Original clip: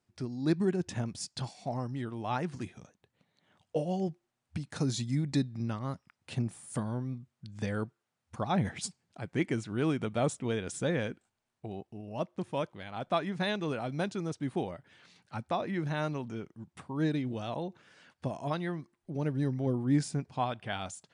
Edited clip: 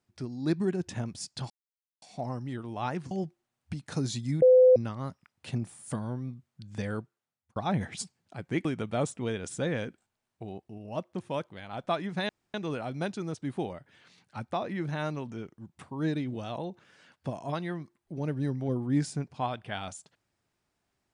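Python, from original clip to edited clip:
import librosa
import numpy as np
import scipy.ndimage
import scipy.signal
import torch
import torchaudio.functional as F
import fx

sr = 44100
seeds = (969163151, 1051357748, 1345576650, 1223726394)

y = fx.edit(x, sr, fx.insert_silence(at_s=1.5, length_s=0.52),
    fx.cut(start_s=2.59, length_s=1.36),
    fx.bleep(start_s=5.26, length_s=0.34, hz=509.0, db=-14.0),
    fx.fade_out_span(start_s=7.75, length_s=0.65),
    fx.cut(start_s=9.49, length_s=0.39),
    fx.insert_room_tone(at_s=13.52, length_s=0.25), tone=tone)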